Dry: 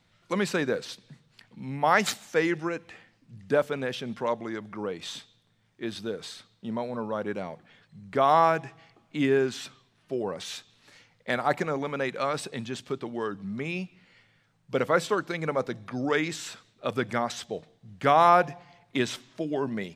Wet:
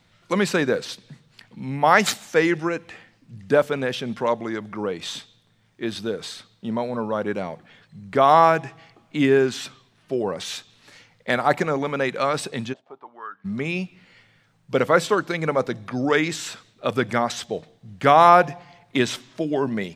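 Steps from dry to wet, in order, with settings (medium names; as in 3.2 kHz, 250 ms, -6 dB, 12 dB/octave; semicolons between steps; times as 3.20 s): 12.72–13.44 s: band-pass filter 580 Hz -> 1.7 kHz, Q 5; trim +6 dB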